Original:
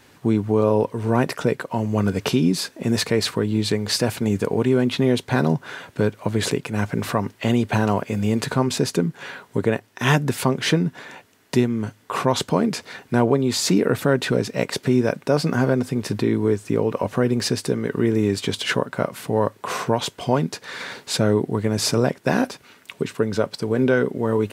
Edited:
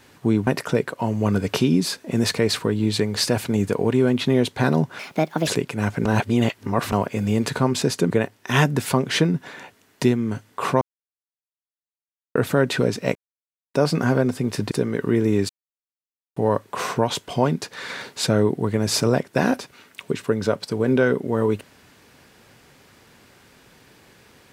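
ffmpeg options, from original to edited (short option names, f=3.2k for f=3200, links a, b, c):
-filter_complex "[0:a]asplit=14[a][b][c][d][e][f][g][h][i][j][k][l][m][n];[a]atrim=end=0.472[o];[b]atrim=start=1.188:end=5.714[p];[c]atrim=start=5.71:end=6.43,asetpts=PTS-STARTPTS,asetrate=65709,aresample=44100,atrim=end_sample=21310,asetpts=PTS-STARTPTS[q];[d]atrim=start=6.426:end=7.012[r];[e]atrim=start=7.008:end=7.882,asetpts=PTS-STARTPTS,areverse[s];[f]atrim=start=7.878:end=9.062[t];[g]atrim=start=9.618:end=12.33,asetpts=PTS-STARTPTS,afade=t=out:st=2.708:d=0.004:c=hsin[u];[h]atrim=start=12.33:end=13.87,asetpts=PTS-STARTPTS,volume=0[v];[i]atrim=start=13.87:end=14.67,asetpts=PTS-STARTPTS,afade=t=in:d=0.004:c=hsin,afade=t=out:st=0.796:d=0.004:c=hsin[w];[j]atrim=start=14.67:end=15.26,asetpts=PTS-STARTPTS,volume=0[x];[k]atrim=start=15.26:end=16.232,asetpts=PTS-STARTPTS,afade=t=in:d=0.004:c=hsin[y];[l]atrim=start=17.618:end=18.4,asetpts=PTS-STARTPTS,afade=t=out:st=0.778:d=0.004:c=hsin[z];[m]atrim=start=18.4:end=19.27,asetpts=PTS-STARTPTS,volume=0[aa];[n]atrim=start=19.27,asetpts=PTS-STARTPTS,afade=t=in:d=0.004:c=hsin[ab];[o][p]acrossfade=d=0.004:c1=hsin:c2=hsin[ac];[ac][q]acrossfade=d=0.004:c1=hsin:c2=hsin[ad];[ad][r]acrossfade=d=0.004:c1=hsin:c2=hsin[ae];[ae][s]acrossfade=d=0.004:c1=hsin:c2=hsin[af];[af][t]acrossfade=d=0.004:c1=hsin:c2=hsin[ag];[u][v][w][x][y]concat=n=5:v=0:a=1[ah];[ag][ah]acrossfade=d=0.004:c1=hsin:c2=hsin[ai];[z][aa][ab]concat=n=3:v=0:a=1[aj];[ai][aj]acrossfade=d=0.004:c1=hsin:c2=hsin"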